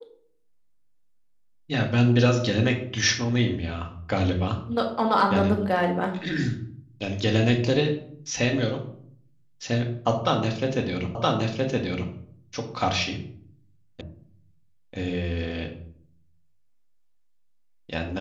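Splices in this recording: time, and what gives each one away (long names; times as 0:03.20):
0:11.15: the same again, the last 0.97 s
0:14.01: cut off before it has died away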